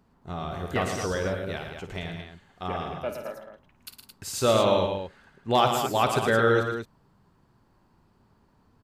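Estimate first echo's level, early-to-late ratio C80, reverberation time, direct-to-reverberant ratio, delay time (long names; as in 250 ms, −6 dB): −10.5 dB, no reverb audible, no reverb audible, no reverb audible, 54 ms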